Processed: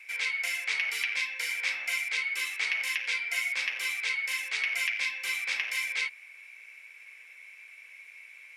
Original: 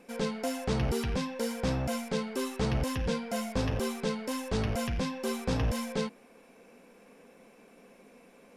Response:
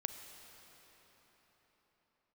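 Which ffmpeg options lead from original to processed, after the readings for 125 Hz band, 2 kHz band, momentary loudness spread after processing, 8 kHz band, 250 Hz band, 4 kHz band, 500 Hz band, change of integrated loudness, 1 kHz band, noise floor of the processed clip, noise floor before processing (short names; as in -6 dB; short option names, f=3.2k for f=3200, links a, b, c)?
under -40 dB, +14.5 dB, 19 LU, +3.0 dB, under -35 dB, +6.5 dB, -23.0 dB, +3.5 dB, -9.0 dB, -52 dBFS, -58 dBFS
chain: -af "highpass=f=2.2k:t=q:w=9,acontrast=23,volume=-2.5dB"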